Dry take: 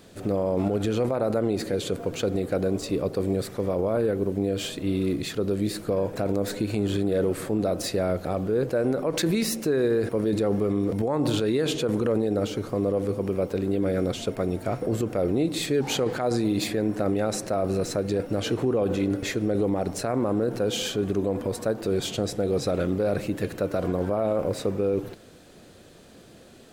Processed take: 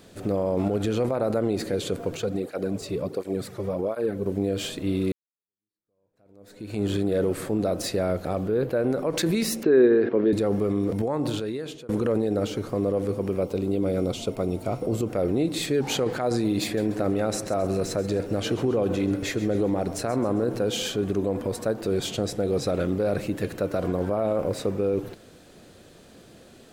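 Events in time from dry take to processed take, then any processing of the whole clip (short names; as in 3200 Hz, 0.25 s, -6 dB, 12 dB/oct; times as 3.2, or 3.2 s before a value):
2.17–4.26 tape flanging out of phase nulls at 1.4 Hz, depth 4.3 ms
5.12–6.82 fade in exponential
8.48–8.9 band shelf 6900 Hz -8.5 dB 1.1 oct
9.63–10.33 speaker cabinet 180–3500 Hz, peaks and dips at 250 Hz +6 dB, 380 Hz +9 dB, 1700 Hz +4 dB
10.99–11.89 fade out, to -21.5 dB
13.43–15.09 bell 1700 Hz -13.5 dB 0.34 oct
16.64–20.63 feedback echo 0.133 s, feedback 45%, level -14.5 dB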